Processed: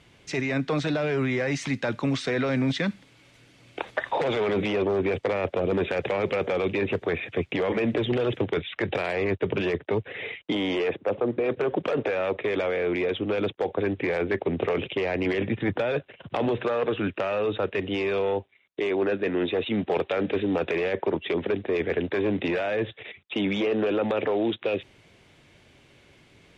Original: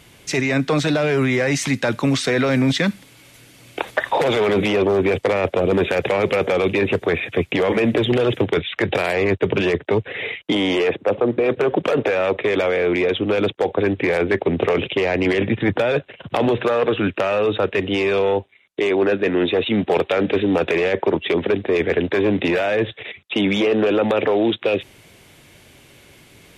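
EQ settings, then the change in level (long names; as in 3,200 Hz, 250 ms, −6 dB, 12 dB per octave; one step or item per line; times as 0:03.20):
high-frequency loss of the air 80 metres
−7.0 dB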